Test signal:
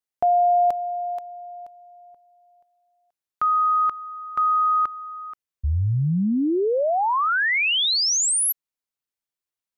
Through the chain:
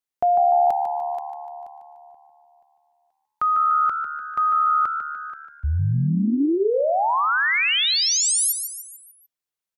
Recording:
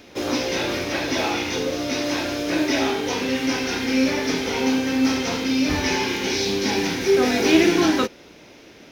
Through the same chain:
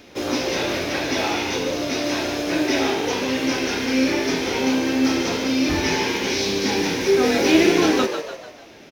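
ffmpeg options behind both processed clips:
-filter_complex "[0:a]asplit=6[a][b][c][d][e][f];[b]adelay=148,afreqshift=74,volume=-8dB[g];[c]adelay=296,afreqshift=148,volume=-14.6dB[h];[d]adelay=444,afreqshift=222,volume=-21.1dB[i];[e]adelay=592,afreqshift=296,volume=-27.7dB[j];[f]adelay=740,afreqshift=370,volume=-34.2dB[k];[a][g][h][i][j][k]amix=inputs=6:normalize=0"

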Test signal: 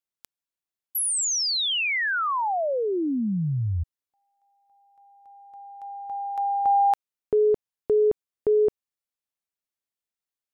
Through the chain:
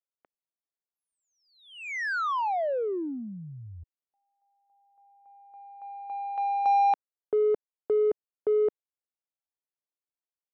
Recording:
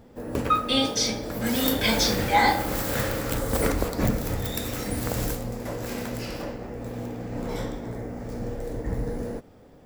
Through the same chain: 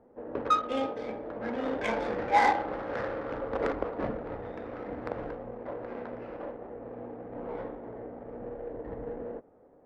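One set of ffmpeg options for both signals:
-filter_complex "[0:a]acrossover=split=320 2600:gain=0.158 1 0.0631[a][b][c];[a][b][c]amix=inputs=3:normalize=0,adynamicsmooth=sensitivity=1.5:basefreq=1.1k,volume=-1.5dB"

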